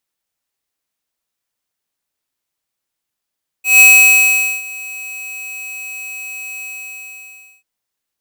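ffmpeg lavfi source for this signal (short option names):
-f lavfi -i "aevalsrc='0.562*(2*lt(mod(2550*t,1),0.5)-1)':d=3.99:s=44100,afade=t=in:d=0.159,afade=t=out:st=0.159:d=0.818:silence=0.0708,afade=t=out:st=2.98:d=1.01"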